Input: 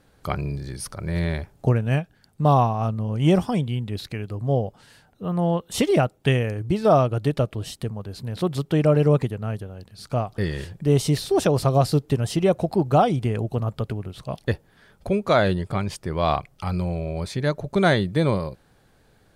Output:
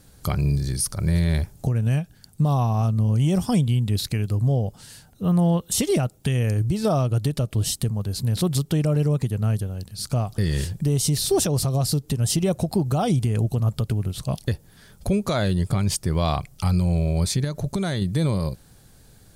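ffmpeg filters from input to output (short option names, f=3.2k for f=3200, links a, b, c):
-filter_complex "[0:a]asettb=1/sr,asplit=3[a][b][c];[a]atrim=end=17.444[d];[b]atrim=start=17.44:end=18.02,asetpts=PTS-STARTPTS,afade=t=in:d=0.004:c=qsin,afade=t=out:st=0.576:d=0.004:c=qsin,acompressor=threshold=-26dB:ratio=6:attack=3.2:release=140:knee=1:detection=peak[e];[c]atrim=start=18.016[f];[d][e]acrossfade=d=0.004:c1=hsin:c2=qsin[g];[g][f]acrossfade=d=0.004:c1=qsin:c2=hsin,bass=f=250:g=9,treble=f=4k:g=15,acompressor=threshold=-14dB:ratio=6,alimiter=limit=-12.5dB:level=0:latency=1:release=158"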